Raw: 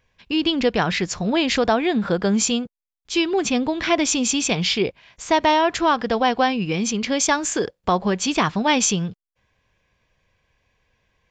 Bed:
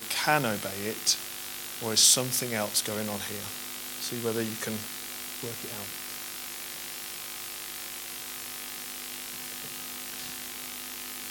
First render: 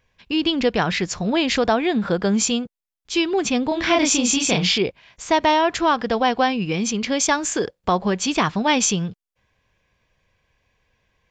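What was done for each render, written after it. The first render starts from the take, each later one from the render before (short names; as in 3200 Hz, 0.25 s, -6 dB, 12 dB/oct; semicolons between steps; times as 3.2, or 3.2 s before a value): 3.68–4.78 doubler 33 ms -2 dB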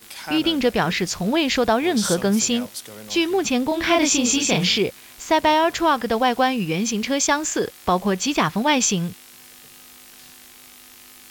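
add bed -7 dB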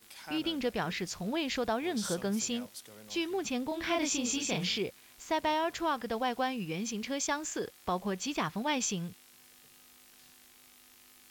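gain -13 dB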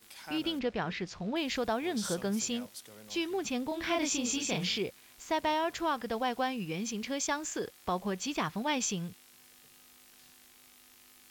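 0.59–1.36 air absorption 130 m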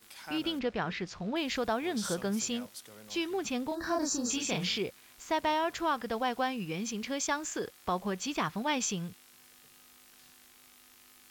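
3.74–4.3 spectral gain 1900–3800 Hz -22 dB; bell 1300 Hz +2.5 dB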